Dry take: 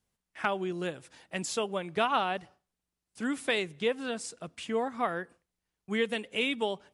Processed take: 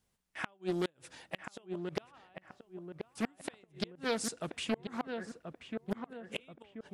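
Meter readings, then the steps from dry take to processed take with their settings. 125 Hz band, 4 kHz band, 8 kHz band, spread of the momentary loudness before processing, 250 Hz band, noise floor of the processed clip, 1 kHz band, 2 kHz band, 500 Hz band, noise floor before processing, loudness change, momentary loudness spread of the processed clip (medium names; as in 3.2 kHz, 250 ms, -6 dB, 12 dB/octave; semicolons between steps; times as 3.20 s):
-2.0 dB, -8.0 dB, -3.5 dB, 10 LU, -3.5 dB, -74 dBFS, -12.0 dB, -9.5 dB, -7.5 dB, under -85 dBFS, -7.5 dB, 16 LU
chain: inverted gate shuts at -23 dBFS, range -35 dB; filtered feedback delay 1032 ms, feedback 44%, low-pass 1.5 kHz, level -6 dB; loudspeaker Doppler distortion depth 0.47 ms; trim +2.5 dB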